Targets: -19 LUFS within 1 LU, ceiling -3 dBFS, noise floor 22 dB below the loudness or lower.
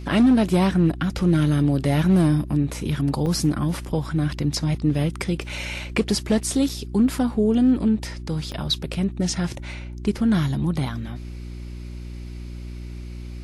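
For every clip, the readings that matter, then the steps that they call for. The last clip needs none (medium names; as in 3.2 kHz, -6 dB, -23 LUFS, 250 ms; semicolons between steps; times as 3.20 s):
dropouts 4; longest dropout 4.1 ms; hum 60 Hz; highest harmonic 360 Hz; hum level -32 dBFS; loudness -22.0 LUFS; peak level -10.0 dBFS; loudness target -19.0 LUFS
-> interpolate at 3.26/5.49/6.69/8.52 s, 4.1 ms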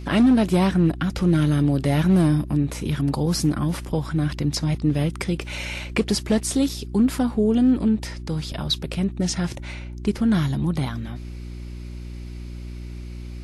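dropouts 0; hum 60 Hz; highest harmonic 360 Hz; hum level -32 dBFS
-> de-hum 60 Hz, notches 6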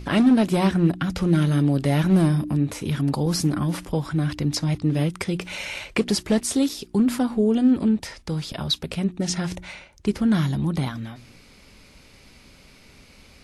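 hum not found; loudness -23.0 LUFS; peak level -8.5 dBFS; loudness target -19.0 LUFS
-> trim +4 dB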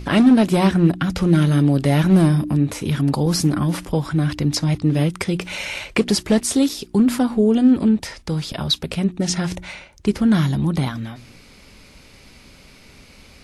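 loudness -19.0 LUFS; peak level -4.5 dBFS; noise floor -47 dBFS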